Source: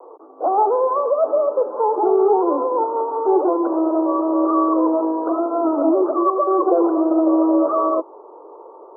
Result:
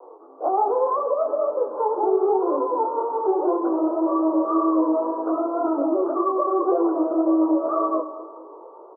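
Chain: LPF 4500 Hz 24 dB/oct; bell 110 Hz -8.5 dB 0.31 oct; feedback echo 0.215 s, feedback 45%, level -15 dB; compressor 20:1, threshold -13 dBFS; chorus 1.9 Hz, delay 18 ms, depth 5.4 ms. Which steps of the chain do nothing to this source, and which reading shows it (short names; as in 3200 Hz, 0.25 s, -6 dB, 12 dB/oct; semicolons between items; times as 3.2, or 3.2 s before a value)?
LPF 4500 Hz: input band ends at 1400 Hz; bell 110 Hz: input band starts at 250 Hz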